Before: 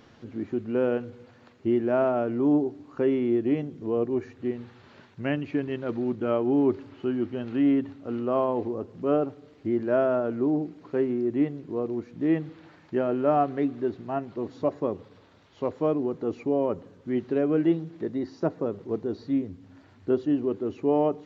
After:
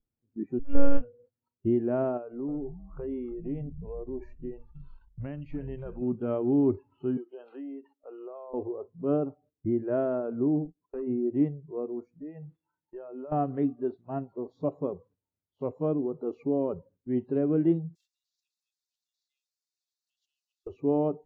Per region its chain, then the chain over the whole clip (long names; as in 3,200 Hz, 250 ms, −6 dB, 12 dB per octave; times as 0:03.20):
0:00.59–0:01.01: high-shelf EQ 2,400 Hz +3 dB + comb filter 2.2 ms, depth 57% + one-pitch LPC vocoder at 8 kHz 280 Hz
0:02.17–0:06.02: downward compressor 4 to 1, threshold −30 dBFS + echo with shifted repeats 311 ms, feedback 37%, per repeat −100 Hz, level −12 dB
0:07.17–0:08.54: high-pass filter 300 Hz 24 dB per octave + downward compressor 10 to 1, threshold −33 dBFS
0:10.65–0:11.07: noise gate −41 dBFS, range −12 dB + downward compressor 3 to 1, threshold −29 dBFS + gain into a clipping stage and back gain 25.5 dB
0:12.08–0:13.32: low-shelf EQ 190 Hz −6 dB + downward compressor 16 to 1, threshold −32 dBFS
0:17.95–0:20.67: Butterworth high-pass 2,100 Hz 48 dB per octave + every bin compressed towards the loudest bin 4 to 1
whole clip: noise reduction from a noise print of the clip's start 24 dB; noise gate −55 dBFS, range −13 dB; spectral tilt −4 dB per octave; level −8 dB